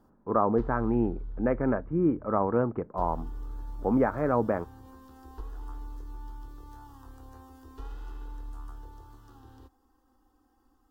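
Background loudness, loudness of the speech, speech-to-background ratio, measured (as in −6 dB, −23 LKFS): −45.5 LKFS, −28.0 LKFS, 17.5 dB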